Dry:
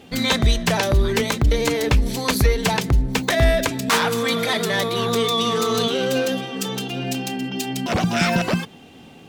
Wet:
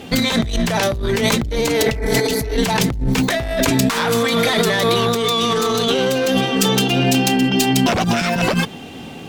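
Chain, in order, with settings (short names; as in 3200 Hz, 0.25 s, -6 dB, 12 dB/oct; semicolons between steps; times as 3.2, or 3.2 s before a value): tube stage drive 13 dB, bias 0.35; spectral repair 1.84–2.53, 270–2500 Hz before; negative-ratio compressor -26 dBFS, ratio -1; gain +8.5 dB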